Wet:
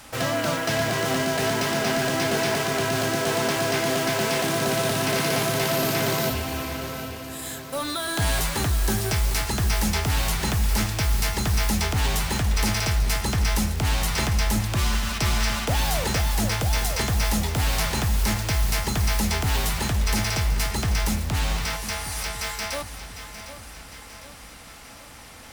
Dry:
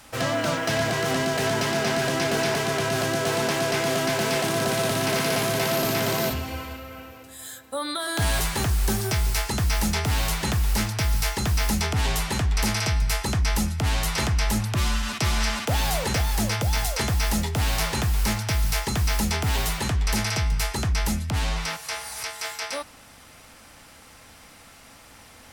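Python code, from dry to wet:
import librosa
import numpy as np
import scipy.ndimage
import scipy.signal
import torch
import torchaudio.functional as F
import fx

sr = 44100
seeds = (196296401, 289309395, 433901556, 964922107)

p1 = (np.mod(10.0 ** (29.0 / 20.0) * x + 1.0, 2.0) - 1.0) / 10.0 ** (29.0 / 20.0)
p2 = x + (p1 * 10.0 ** (-6.0 / 20.0))
y = fx.echo_feedback(p2, sr, ms=755, feedback_pct=53, wet_db=-12)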